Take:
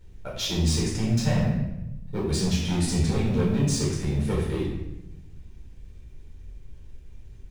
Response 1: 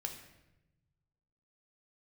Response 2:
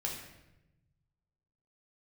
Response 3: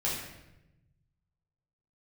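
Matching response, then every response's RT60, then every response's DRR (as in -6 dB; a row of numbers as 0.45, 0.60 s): 3; 0.95, 0.95, 0.95 s; 3.5, -1.5, -6.5 dB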